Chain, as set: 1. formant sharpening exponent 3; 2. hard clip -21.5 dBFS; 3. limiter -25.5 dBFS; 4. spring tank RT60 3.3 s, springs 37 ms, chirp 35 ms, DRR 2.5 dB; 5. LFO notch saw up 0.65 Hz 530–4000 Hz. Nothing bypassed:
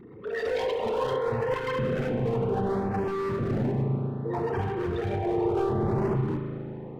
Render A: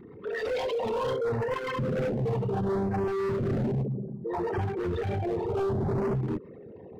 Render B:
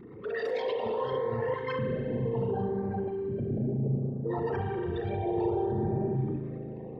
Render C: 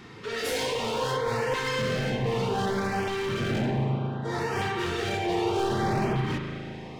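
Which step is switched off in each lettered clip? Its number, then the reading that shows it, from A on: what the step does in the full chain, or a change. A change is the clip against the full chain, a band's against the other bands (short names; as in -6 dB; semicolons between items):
4, momentary loudness spread change +1 LU; 2, distortion -8 dB; 1, 4 kHz band +12.0 dB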